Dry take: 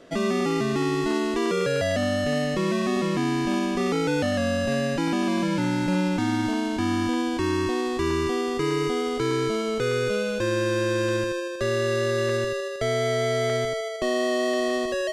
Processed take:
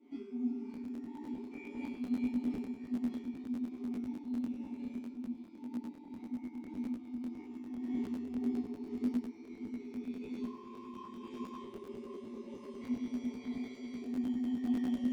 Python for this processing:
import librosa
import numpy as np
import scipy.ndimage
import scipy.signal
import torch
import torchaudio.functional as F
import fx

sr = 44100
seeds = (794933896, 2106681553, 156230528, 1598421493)

p1 = fx.high_shelf(x, sr, hz=3700.0, db=9.5)
p2 = 10.0 ** (-24.0 / 20.0) * np.tanh(p1 / 10.0 ** (-24.0 / 20.0))
p3 = p1 + (p2 * librosa.db_to_amplitude(-8.0))
p4 = fx.peak_eq(p3, sr, hz=270.0, db=13.0, octaves=1.7)
p5 = p4 + fx.echo_diffused(p4, sr, ms=553, feedback_pct=59, wet_db=-6.5, dry=0)
p6 = fx.over_compress(p5, sr, threshold_db=-16.0, ratio=-0.5)
p7 = fx.vowel_filter(p6, sr, vowel='u')
p8 = fx.comb_fb(p7, sr, f0_hz=81.0, decay_s=0.81, harmonics='odd', damping=0.0, mix_pct=100)
p9 = fx.buffer_crackle(p8, sr, first_s=0.73, period_s=0.1, block=512, kind='repeat')
p10 = fx.detune_double(p9, sr, cents=60)
y = p10 * librosa.db_to_amplitude(8.0)